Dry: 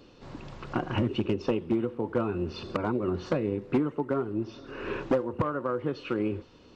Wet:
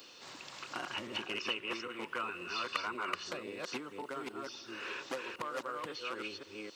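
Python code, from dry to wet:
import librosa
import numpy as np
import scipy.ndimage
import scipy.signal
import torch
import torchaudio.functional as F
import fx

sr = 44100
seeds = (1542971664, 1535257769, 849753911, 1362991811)

y = fx.reverse_delay(x, sr, ms=268, wet_db=-2.0)
y = fx.spec_box(y, sr, start_s=1.31, length_s=1.92, low_hz=950.0, high_hz=3100.0, gain_db=8)
y = np.diff(y, prepend=0.0)
y = fx.band_squash(y, sr, depth_pct=40)
y = y * librosa.db_to_amplitude(7.5)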